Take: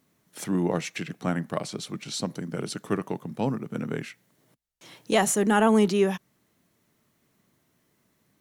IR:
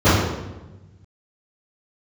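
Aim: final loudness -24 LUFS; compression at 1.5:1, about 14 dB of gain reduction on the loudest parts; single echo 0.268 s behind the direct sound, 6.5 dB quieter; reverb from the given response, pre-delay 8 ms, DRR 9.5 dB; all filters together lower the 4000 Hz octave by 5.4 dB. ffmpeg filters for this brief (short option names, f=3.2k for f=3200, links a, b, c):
-filter_complex "[0:a]equalizer=f=4k:t=o:g=-7.5,acompressor=threshold=-56dB:ratio=1.5,aecho=1:1:268:0.473,asplit=2[a][b];[1:a]atrim=start_sample=2205,adelay=8[c];[b][c]afir=irnorm=-1:irlink=0,volume=-35.5dB[d];[a][d]amix=inputs=2:normalize=0,volume=13.5dB"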